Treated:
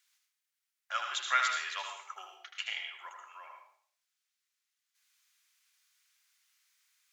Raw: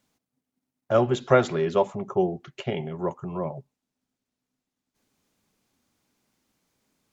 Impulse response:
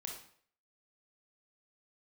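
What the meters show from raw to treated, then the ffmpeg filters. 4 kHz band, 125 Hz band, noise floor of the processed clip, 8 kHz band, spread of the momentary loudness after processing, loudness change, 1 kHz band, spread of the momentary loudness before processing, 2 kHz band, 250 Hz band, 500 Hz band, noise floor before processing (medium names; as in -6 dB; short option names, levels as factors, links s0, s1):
+4.0 dB, under -40 dB, under -85 dBFS, no reading, 21 LU, -8.0 dB, -6.0 dB, 12 LU, +2.0 dB, under -40 dB, -31.5 dB, under -85 dBFS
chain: -filter_complex "[0:a]highpass=f=1500:w=0.5412,highpass=f=1500:w=1.3066,asplit=2[s0][s1];[1:a]atrim=start_sample=2205,adelay=78[s2];[s1][s2]afir=irnorm=-1:irlink=0,volume=0.944[s3];[s0][s3]amix=inputs=2:normalize=0,volume=1.26"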